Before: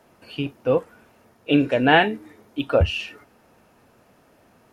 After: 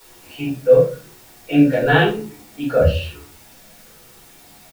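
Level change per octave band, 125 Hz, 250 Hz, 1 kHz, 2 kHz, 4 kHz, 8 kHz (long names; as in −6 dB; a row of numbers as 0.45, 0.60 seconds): +6.0 dB, +4.5 dB, −1.0 dB, +1.0 dB, −1.5 dB, can't be measured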